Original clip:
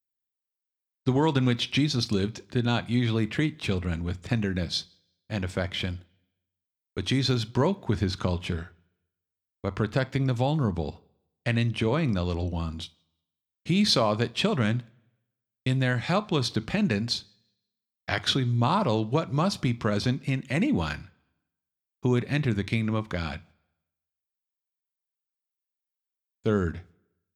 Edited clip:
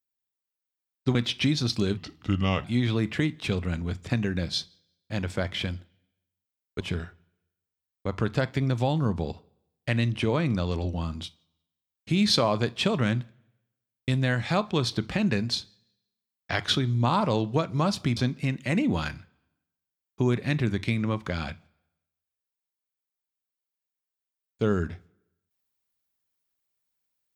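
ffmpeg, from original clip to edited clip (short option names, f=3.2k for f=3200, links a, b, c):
-filter_complex "[0:a]asplit=6[a][b][c][d][e][f];[a]atrim=end=1.152[g];[b]atrim=start=1.478:end=2.304[h];[c]atrim=start=2.3:end=2.84,asetpts=PTS-STARTPTS,asetrate=35280,aresample=44100[i];[d]atrim=start=2.836:end=7.002[j];[e]atrim=start=8.388:end=19.752[k];[f]atrim=start=20.008[l];[g][h]acrossfade=d=0.004:c1=hsin:c2=hsin[m];[m][i]acrossfade=d=0.004:c1=hsin:c2=hsin[n];[n][j]acrossfade=d=0.004:c1=hsin:c2=hsin[o];[o][k]acrossfade=d=0.004:c1=hsin:c2=hsin[p];[p][l]acrossfade=d=0.004:c1=hsin:c2=hsin"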